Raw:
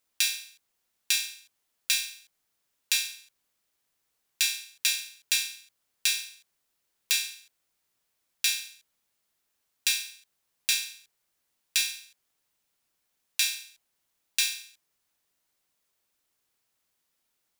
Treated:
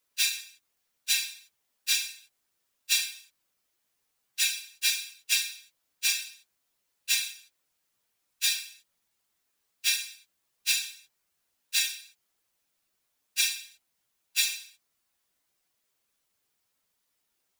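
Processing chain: phase scrambler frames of 50 ms

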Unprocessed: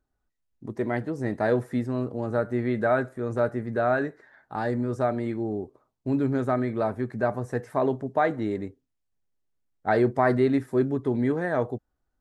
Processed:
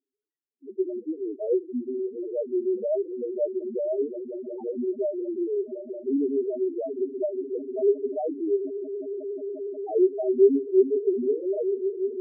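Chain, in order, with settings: speaker cabinet 260–2400 Hz, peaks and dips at 290 Hz +4 dB, 410 Hz +9 dB, 750 Hz -5 dB, 1300 Hz -4 dB; swelling echo 0.179 s, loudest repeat 8, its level -16 dB; loudest bins only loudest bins 2

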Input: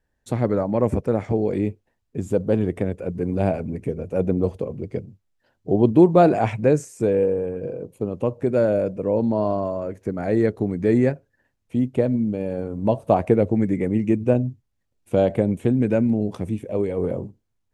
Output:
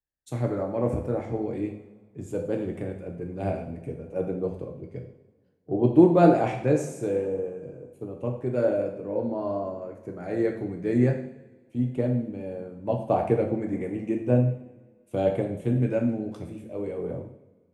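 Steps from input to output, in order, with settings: two-slope reverb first 0.74 s, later 3.1 s, DRR 1.5 dB; three-band expander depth 40%; gain -8 dB

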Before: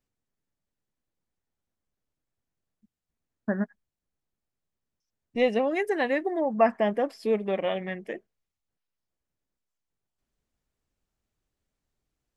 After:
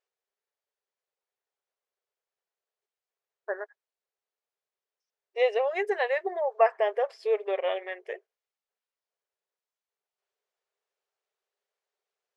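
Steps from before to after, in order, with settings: brick-wall FIR high-pass 370 Hz; air absorption 70 m

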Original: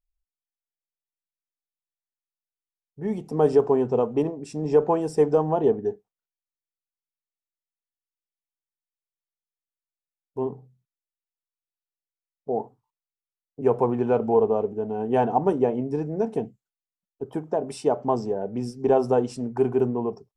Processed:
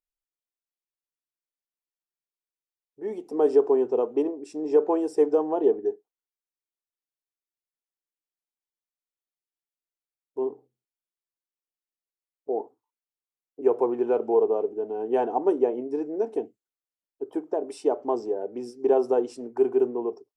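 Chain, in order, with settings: resonant low shelf 230 Hz -12.5 dB, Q 3; gain -5.5 dB

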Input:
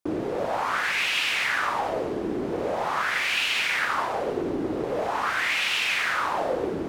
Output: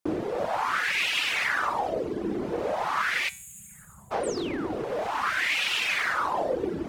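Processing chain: 3.29–4.12 spectral gain 210–6500 Hz -30 dB; reverb removal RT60 0.88 s; 4.23–4.78 painted sound fall 570–9500 Hz -41 dBFS; resonator 68 Hz, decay 0.42 s, harmonics odd, mix 50%; 4.35–5.16 overloaded stage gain 31 dB; gain +5.5 dB

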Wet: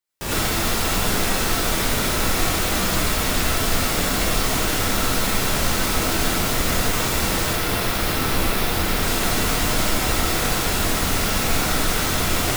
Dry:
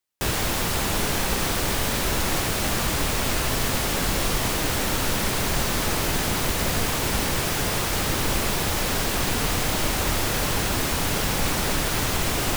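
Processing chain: 7.45–8.97 bell 7200 Hz -5.5 dB 0.86 oct; non-linear reverb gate 0.13 s rising, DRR -7.5 dB; gain -5 dB

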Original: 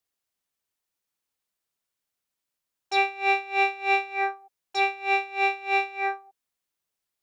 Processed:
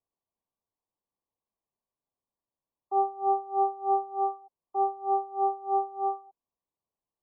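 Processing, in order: brick-wall FIR low-pass 1200 Hz

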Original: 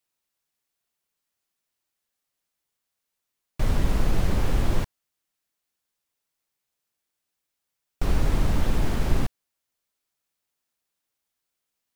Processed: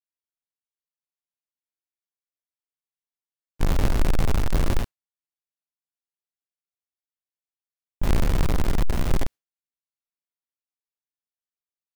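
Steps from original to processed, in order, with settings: half-waves squared off; gate with hold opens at -16 dBFS; gain -3.5 dB

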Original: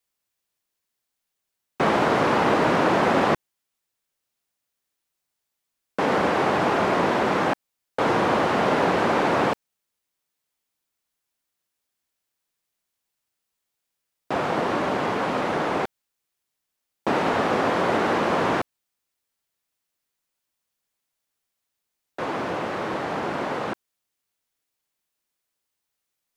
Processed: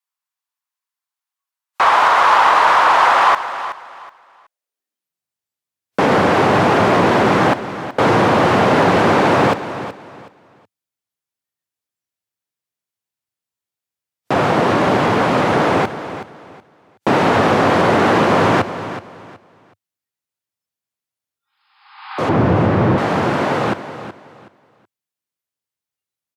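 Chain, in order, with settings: 21.42–22.21 spectral repair 770–5200 Hz both; 22.29–22.98 RIAA curve playback; spectral noise reduction 17 dB; in parallel at +1 dB: limiter -15 dBFS, peak gain reduction 7 dB; on the sum: high-pass sweep 1000 Hz -> 99 Hz, 4.29–5.3; added harmonics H 5 -21 dB, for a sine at -1.5 dBFS; on a send: feedback echo 0.373 s, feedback 25%, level -12.5 dB

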